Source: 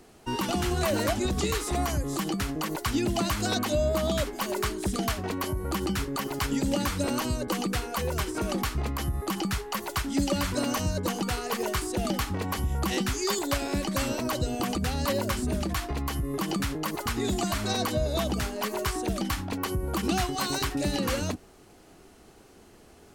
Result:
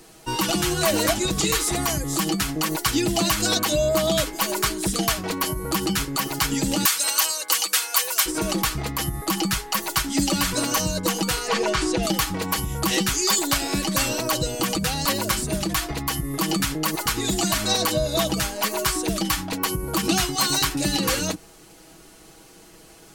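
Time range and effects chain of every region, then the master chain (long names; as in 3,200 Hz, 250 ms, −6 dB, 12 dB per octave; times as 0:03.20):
0:06.85–0:08.26: high-pass filter 800 Hz + spectral tilt +2 dB per octave
0:11.48–0:12.03: high-frequency loss of the air 100 metres + envelope flattener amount 70%
whole clip: high-shelf EQ 2,600 Hz +8.5 dB; comb filter 6.2 ms; level +2 dB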